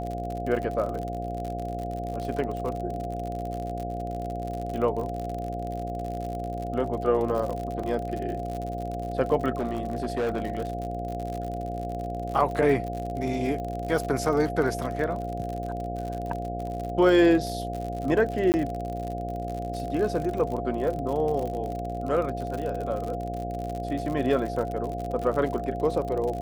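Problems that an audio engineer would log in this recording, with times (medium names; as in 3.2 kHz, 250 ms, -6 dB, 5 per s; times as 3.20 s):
buzz 60 Hz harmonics 13 -34 dBFS
crackle 62 per s -31 dBFS
whine 700 Hz -33 dBFS
7.83 s: dropout 5 ms
9.57–10.70 s: clipped -23 dBFS
18.52–18.54 s: dropout 19 ms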